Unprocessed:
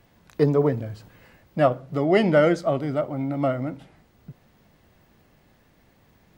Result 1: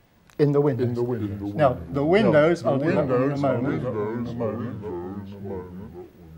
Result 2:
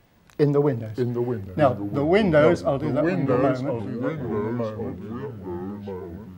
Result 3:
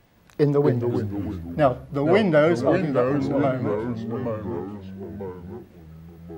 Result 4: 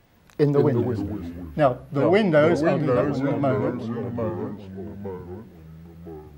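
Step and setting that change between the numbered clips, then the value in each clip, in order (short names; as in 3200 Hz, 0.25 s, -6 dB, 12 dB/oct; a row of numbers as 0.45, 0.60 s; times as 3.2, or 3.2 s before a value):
echoes that change speed, time: 320, 508, 173, 96 ms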